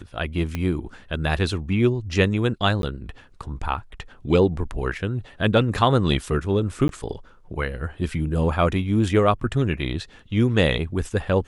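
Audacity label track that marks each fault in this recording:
0.550000	0.550000	pop -14 dBFS
2.820000	2.830000	gap 12 ms
6.880000	6.890000	gap 12 ms

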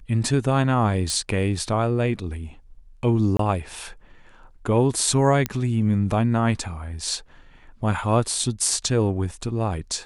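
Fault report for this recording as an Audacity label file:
1.100000	1.100000	pop
3.370000	3.390000	gap 23 ms
5.460000	5.460000	pop -9 dBFS

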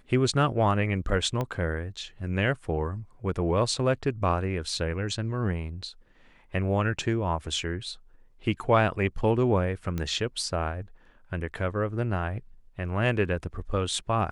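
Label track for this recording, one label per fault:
1.410000	1.410000	pop -17 dBFS
9.980000	9.980000	pop -18 dBFS

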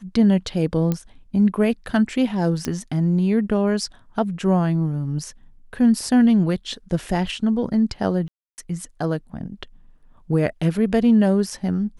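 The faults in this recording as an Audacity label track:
0.920000	0.920000	pop -11 dBFS
2.650000	2.650000	pop -11 dBFS
8.280000	8.580000	gap 0.299 s

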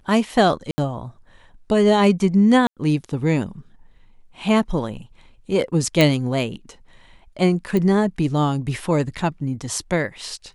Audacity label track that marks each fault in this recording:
0.710000	0.780000	gap 70 ms
2.670000	2.770000	gap 97 ms
6.010000	6.010000	pop
7.770000	7.770000	pop -11 dBFS

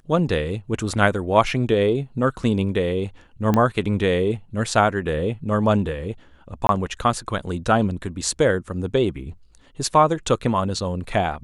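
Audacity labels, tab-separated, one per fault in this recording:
3.540000	3.540000	pop -8 dBFS
6.670000	6.690000	gap 22 ms

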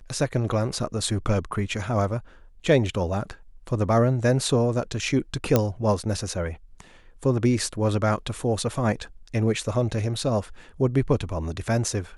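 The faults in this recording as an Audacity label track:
5.560000	5.560000	pop -5 dBFS

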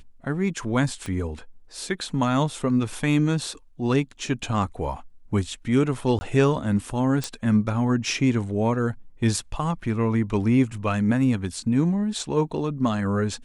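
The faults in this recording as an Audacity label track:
1.060000	1.060000	pop -20 dBFS
6.190000	6.210000	gap 20 ms
7.240000	7.240000	pop

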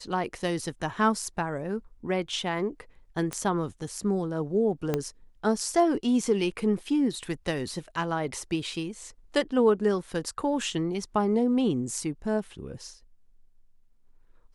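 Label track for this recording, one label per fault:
3.330000	3.330000	pop -16 dBFS
4.940000	4.940000	pop -13 dBFS

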